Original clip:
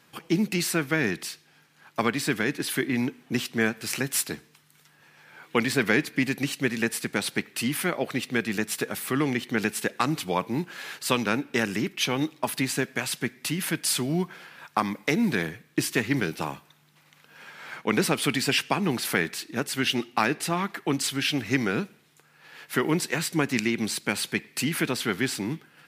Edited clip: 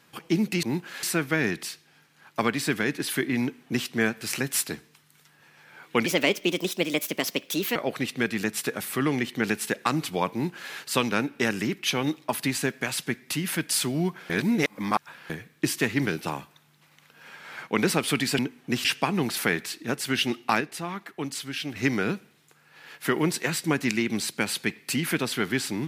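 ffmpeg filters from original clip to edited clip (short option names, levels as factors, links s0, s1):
-filter_complex "[0:a]asplit=11[s0][s1][s2][s3][s4][s5][s6][s7][s8][s9][s10];[s0]atrim=end=0.632[s11];[s1]atrim=start=10.468:end=10.872[s12];[s2]atrim=start=0.628:end=5.664[s13];[s3]atrim=start=5.66:end=7.9,asetpts=PTS-STARTPTS,asetrate=58212,aresample=44100,atrim=end_sample=74836,asetpts=PTS-STARTPTS[s14];[s4]atrim=start=7.896:end=14.442[s15];[s5]atrim=start=14.438:end=15.442,asetpts=PTS-STARTPTS,areverse[s16];[s6]atrim=start=15.438:end=18.532[s17];[s7]atrim=start=3.008:end=3.472[s18];[s8]atrim=start=18.528:end=20.292[s19];[s9]atrim=start=20.288:end=21.442,asetpts=PTS-STARTPTS,volume=0.473[s20];[s10]atrim=start=21.438[s21];[s11][s12]acrossfade=d=0.004:c1=hsin:c2=hsin[s22];[s22][s13]acrossfade=d=0.004:c1=hsin:c2=hsin[s23];[s23][s14]acrossfade=d=0.004:c1=hsin:c2=hsin[s24];[s24][s15]acrossfade=d=0.004:c1=hsin:c2=hsin[s25];[s25][s16]acrossfade=d=0.004:c1=hsin:c2=hsin[s26];[s26][s17]acrossfade=d=0.004:c1=hsin:c2=hsin[s27];[s27][s18]acrossfade=d=0.004:c1=hsin:c2=hsin[s28];[s28][s19]acrossfade=d=0.004:c1=hsin:c2=hsin[s29];[s29][s20]acrossfade=d=0.004:c1=hsin:c2=hsin[s30];[s30][s21]acrossfade=d=0.004:c1=hsin:c2=hsin"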